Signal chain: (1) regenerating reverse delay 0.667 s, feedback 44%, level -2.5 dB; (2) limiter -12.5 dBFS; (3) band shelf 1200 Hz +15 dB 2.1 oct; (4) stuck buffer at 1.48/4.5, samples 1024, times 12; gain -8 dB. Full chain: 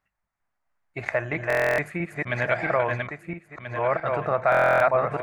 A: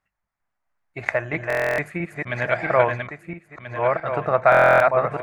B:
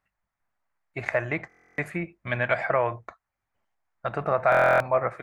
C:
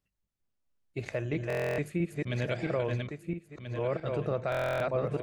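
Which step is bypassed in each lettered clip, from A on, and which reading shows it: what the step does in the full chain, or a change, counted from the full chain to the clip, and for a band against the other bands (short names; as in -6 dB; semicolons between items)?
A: 2, momentary loudness spread change +4 LU; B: 1, loudness change -1.5 LU; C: 3, 1 kHz band -12.5 dB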